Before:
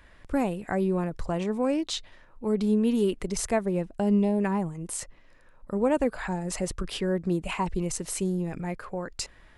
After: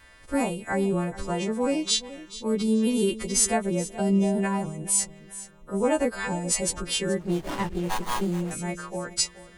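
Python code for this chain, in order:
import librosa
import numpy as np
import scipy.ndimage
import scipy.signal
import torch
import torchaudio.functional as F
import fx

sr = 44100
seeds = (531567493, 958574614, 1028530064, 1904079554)

y = fx.freq_snap(x, sr, grid_st=2)
y = fx.echo_feedback(y, sr, ms=427, feedback_pct=32, wet_db=-16.0)
y = fx.running_max(y, sr, window=17, at=(7.2, 8.51))
y = y * librosa.db_to_amplitude(1.0)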